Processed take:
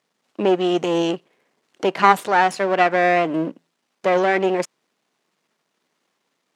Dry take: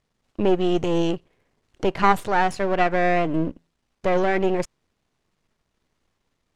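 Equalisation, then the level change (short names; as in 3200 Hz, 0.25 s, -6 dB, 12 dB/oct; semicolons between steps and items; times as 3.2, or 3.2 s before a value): HPF 160 Hz 24 dB/oct; low shelf 220 Hz -10.5 dB; +5.0 dB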